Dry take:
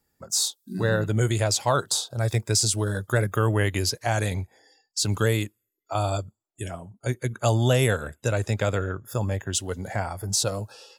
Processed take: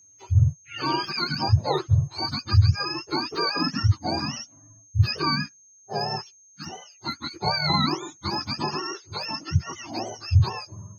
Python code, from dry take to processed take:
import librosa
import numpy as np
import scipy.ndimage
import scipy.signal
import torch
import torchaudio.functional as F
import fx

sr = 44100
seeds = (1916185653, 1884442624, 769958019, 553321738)

y = fx.octave_mirror(x, sr, pivot_hz=720.0)
y = fx.vibrato(y, sr, rate_hz=8.0, depth_cents=13.0)
y = y + 10.0 ** (-52.0 / 20.0) * np.sin(2.0 * np.pi * 6400.0 * np.arange(len(y)) / sr)